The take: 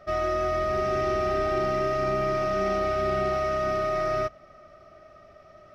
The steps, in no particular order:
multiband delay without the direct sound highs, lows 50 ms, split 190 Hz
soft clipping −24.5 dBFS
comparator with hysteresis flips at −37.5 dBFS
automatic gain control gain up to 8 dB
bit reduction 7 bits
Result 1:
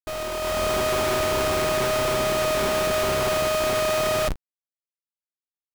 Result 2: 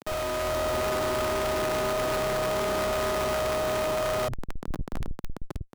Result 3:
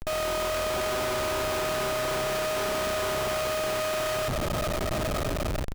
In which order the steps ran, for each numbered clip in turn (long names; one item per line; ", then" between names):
soft clipping, then multiband delay without the direct sound, then comparator with hysteresis, then automatic gain control, then bit reduction
bit reduction, then comparator with hysteresis, then multiband delay without the direct sound, then automatic gain control, then soft clipping
automatic gain control, then soft clipping, then multiband delay without the direct sound, then bit reduction, then comparator with hysteresis